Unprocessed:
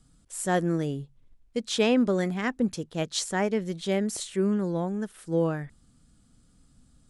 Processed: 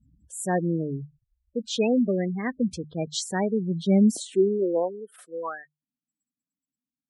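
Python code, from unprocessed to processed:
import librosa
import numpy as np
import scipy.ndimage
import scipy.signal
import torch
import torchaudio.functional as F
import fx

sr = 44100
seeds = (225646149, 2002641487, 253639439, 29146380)

y = fx.hum_notches(x, sr, base_hz=50, count=3)
y = fx.spec_gate(y, sr, threshold_db=-15, keep='strong')
y = fx.filter_sweep_highpass(y, sr, from_hz=68.0, to_hz=1300.0, start_s=3.05, end_s=5.74, q=3.6)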